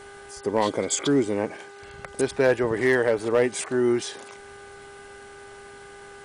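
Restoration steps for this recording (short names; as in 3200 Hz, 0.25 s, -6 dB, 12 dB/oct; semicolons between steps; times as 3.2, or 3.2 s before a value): clip repair -12 dBFS; de-hum 401.4 Hz, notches 5; notch 1500 Hz, Q 30; interpolate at 3.19, 1.8 ms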